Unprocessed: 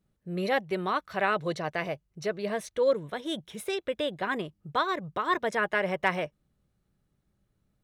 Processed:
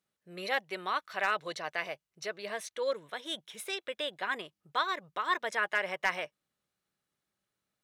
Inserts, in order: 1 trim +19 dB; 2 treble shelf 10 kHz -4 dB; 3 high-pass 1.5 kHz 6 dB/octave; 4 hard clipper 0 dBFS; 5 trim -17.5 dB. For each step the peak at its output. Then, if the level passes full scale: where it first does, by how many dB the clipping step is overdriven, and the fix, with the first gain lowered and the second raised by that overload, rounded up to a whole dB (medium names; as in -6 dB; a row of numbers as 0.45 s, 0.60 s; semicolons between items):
+8.5 dBFS, +8.5 dBFS, +5.5 dBFS, 0.0 dBFS, -17.5 dBFS; step 1, 5.5 dB; step 1 +13 dB, step 5 -11.5 dB